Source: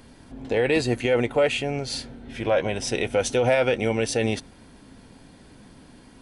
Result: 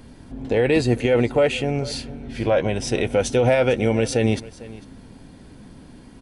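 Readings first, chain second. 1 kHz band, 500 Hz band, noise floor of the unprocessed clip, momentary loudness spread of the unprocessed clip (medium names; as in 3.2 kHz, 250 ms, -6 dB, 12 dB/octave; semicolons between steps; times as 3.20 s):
+1.5 dB, +3.0 dB, -50 dBFS, 10 LU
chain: bass shelf 420 Hz +7 dB; delay 449 ms -19 dB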